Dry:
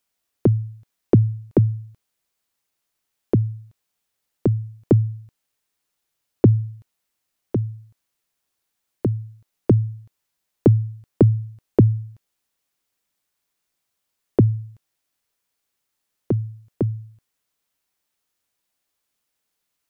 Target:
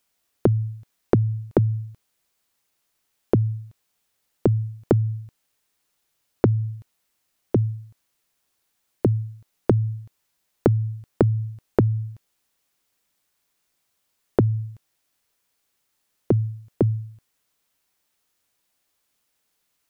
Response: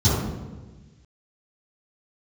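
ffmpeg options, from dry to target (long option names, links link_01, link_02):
-af "acompressor=threshold=-19dB:ratio=12,volume=4.5dB"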